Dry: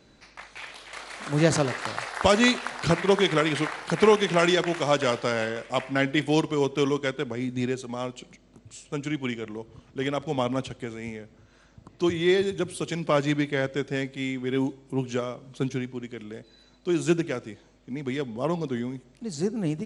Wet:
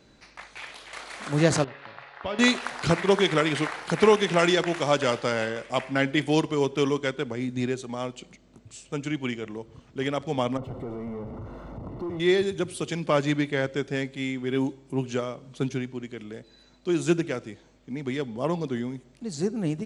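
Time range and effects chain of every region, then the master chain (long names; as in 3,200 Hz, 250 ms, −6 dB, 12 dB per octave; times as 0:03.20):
0:01.64–0:02.39: low-pass filter 3,800 Hz 24 dB per octave + tuned comb filter 140 Hz, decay 1.1 s, mix 80%
0:10.57–0:12.20: downward compressor 2 to 1, threshold −47 dBFS + power curve on the samples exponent 0.35 + Savitzky-Golay smoothing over 65 samples
whole clip: no processing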